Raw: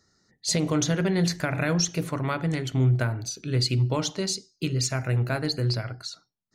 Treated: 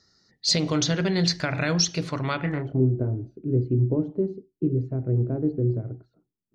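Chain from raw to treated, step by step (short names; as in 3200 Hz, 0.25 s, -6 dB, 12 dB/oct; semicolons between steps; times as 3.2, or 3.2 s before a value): 2.4–3.15 doubler 28 ms -8 dB; low-pass sweep 4800 Hz -> 360 Hz, 2.3–2.82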